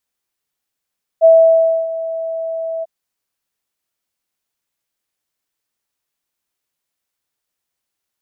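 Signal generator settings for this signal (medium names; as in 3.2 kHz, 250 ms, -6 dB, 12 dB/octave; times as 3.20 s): ADSR sine 654 Hz, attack 37 ms, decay 626 ms, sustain -16 dB, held 1.62 s, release 26 ms -3.5 dBFS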